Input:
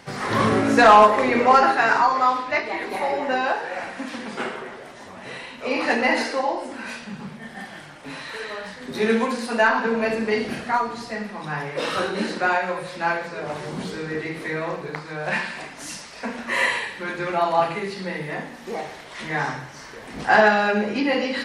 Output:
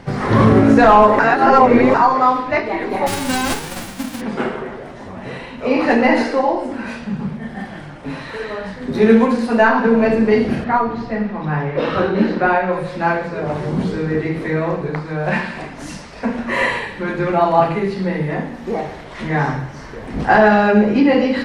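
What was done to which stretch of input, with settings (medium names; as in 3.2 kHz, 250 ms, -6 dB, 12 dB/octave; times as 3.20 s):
1.19–1.94 s: reverse
3.06–4.20 s: formants flattened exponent 0.1
10.64–12.73 s: low-pass 3.9 kHz
whole clip: tilt EQ -3 dB/octave; loudness maximiser +6 dB; trim -1 dB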